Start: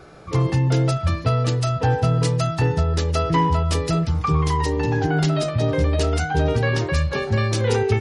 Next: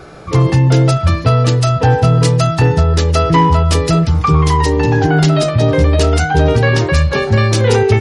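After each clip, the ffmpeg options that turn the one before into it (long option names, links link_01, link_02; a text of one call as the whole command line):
ffmpeg -i in.wav -af "acontrast=68,volume=2.5dB" out.wav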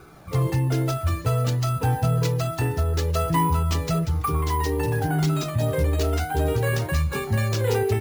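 ffmpeg -i in.wav -af "flanger=delay=0.8:depth=2.2:regen=-40:speed=0.56:shape=sinusoidal,acrusher=samples=4:mix=1:aa=0.000001,volume=-8dB" out.wav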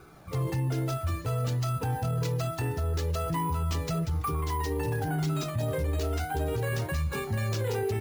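ffmpeg -i in.wav -af "alimiter=limit=-18dB:level=0:latency=1:release=17,volume=-4.5dB" out.wav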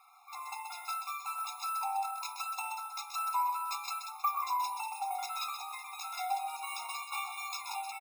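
ffmpeg -i in.wav -af "aecho=1:1:129:0.422,dynaudnorm=framelen=140:gausssize=5:maxgain=4.5dB,afftfilt=real='re*eq(mod(floor(b*sr/1024/700),2),1)':imag='im*eq(mod(floor(b*sr/1024/700),2),1)':win_size=1024:overlap=0.75,volume=-2.5dB" out.wav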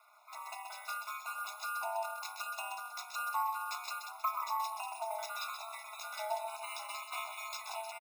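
ffmpeg -i in.wav -af "aeval=exprs='val(0)*sin(2*PI*110*n/s)':channel_layout=same,aecho=1:1:625:0.0794" out.wav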